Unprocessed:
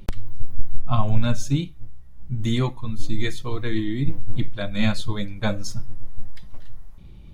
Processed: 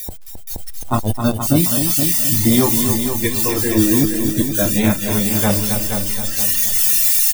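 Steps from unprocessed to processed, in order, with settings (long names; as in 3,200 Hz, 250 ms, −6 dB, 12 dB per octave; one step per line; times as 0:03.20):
tilt shelving filter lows +4.5 dB, about 900 Hz
background noise blue −23 dBFS
gain into a clipping stage and back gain 13 dB
noise reduction from a noise print of the clip's start 21 dB
repeating echo 473 ms, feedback 29%, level −7.5 dB
automatic gain control gain up to 11.5 dB
parametric band 130 Hz −14 dB 0.37 octaves
single-tap delay 265 ms −7.5 dB
level +1 dB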